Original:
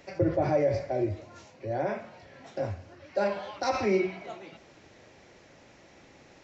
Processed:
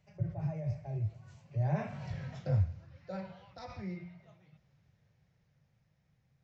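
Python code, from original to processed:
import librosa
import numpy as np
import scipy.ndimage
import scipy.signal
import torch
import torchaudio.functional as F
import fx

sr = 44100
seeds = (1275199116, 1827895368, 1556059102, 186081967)

y = fx.doppler_pass(x, sr, speed_mps=20, closest_m=2.8, pass_at_s=2.13)
y = fx.low_shelf_res(y, sr, hz=210.0, db=12.5, q=3.0)
y = y * 10.0 ** (2.5 / 20.0)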